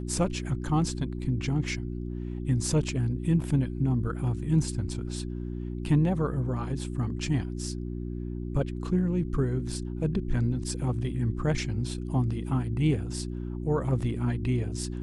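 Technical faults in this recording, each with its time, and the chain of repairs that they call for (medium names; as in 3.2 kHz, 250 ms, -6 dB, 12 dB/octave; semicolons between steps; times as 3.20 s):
hum 60 Hz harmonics 6 -34 dBFS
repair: de-hum 60 Hz, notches 6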